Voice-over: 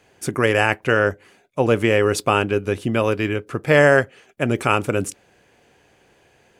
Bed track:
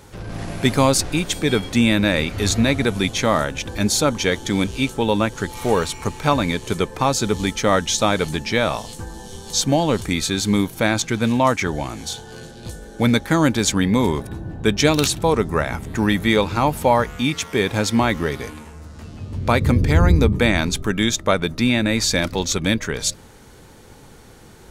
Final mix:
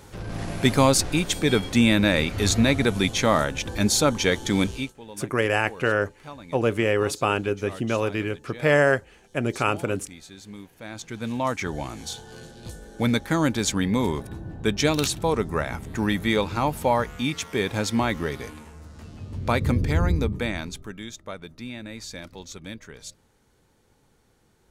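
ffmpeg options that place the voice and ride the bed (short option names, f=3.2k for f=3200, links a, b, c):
-filter_complex "[0:a]adelay=4950,volume=-5dB[a];[1:a]volume=15.5dB,afade=t=out:st=4.66:d=0.27:silence=0.0891251,afade=t=in:st=10.8:d=1.03:silence=0.133352,afade=t=out:st=19.7:d=1.32:silence=0.223872[b];[a][b]amix=inputs=2:normalize=0"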